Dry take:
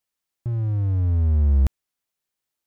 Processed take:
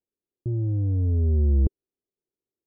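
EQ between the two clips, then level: resonant low-pass 390 Hz, resonance Q 3.8; -2.5 dB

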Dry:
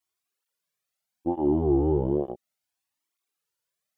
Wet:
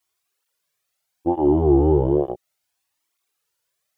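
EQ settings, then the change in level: peaking EQ 220 Hz -11 dB 0.49 oct; +8.0 dB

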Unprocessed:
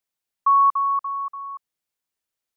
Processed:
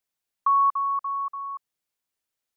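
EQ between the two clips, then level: dynamic bell 1.1 kHz, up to -4 dB, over -26 dBFS; 0.0 dB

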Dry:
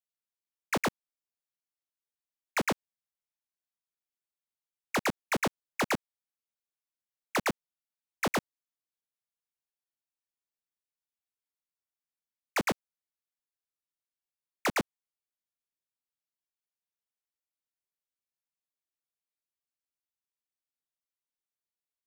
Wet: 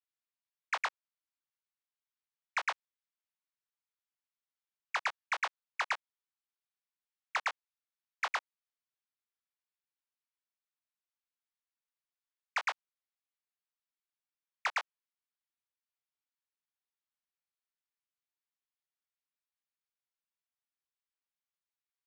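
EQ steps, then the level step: high-pass 860 Hz 24 dB/octave; distance through air 130 m; 0.0 dB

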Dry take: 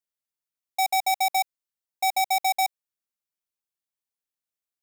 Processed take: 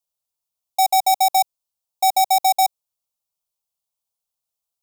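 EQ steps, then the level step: static phaser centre 740 Hz, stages 4; +7.5 dB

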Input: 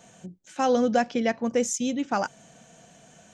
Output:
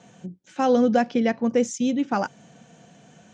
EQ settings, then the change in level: band-pass 110–5700 Hz; bass shelf 440 Hz +6.5 dB; band-stop 640 Hz, Q 12; 0.0 dB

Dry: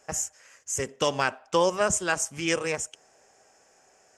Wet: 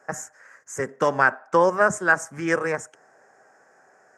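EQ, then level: high-pass 120 Hz 24 dB/octave; resonant high shelf 2.2 kHz -10 dB, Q 3; +3.5 dB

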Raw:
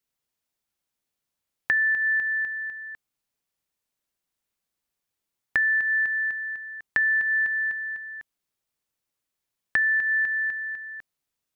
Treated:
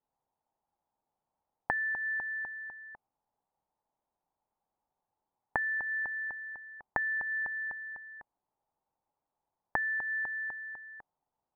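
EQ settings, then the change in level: resonant low-pass 850 Hz, resonance Q 5.4; 0.0 dB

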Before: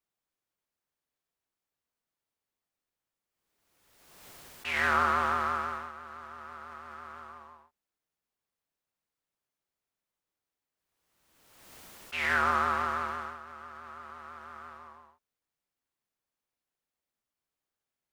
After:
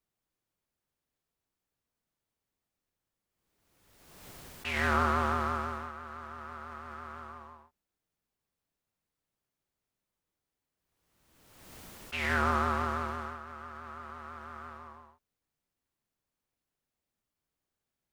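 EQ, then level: dynamic bell 1.6 kHz, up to -4 dB, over -37 dBFS, Q 0.74; bass shelf 320 Hz +9.5 dB; 0.0 dB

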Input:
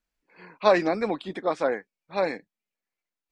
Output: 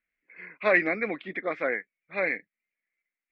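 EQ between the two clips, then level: resonant low-pass 2.1 kHz, resonance Q 7.2; bass shelf 81 Hz -11 dB; peaking EQ 900 Hz -12.5 dB 0.45 oct; -3.5 dB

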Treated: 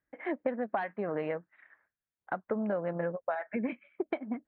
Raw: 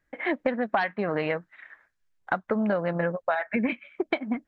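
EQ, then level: high-pass 97 Hz 6 dB/octave; dynamic bell 460 Hz, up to +4 dB, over -39 dBFS, Q 0.77; distance through air 450 m; -7.5 dB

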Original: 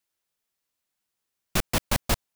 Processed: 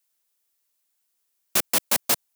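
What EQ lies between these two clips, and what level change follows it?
high-pass 280 Hz 12 dB/octave; treble shelf 5.7 kHz +11 dB; 0.0 dB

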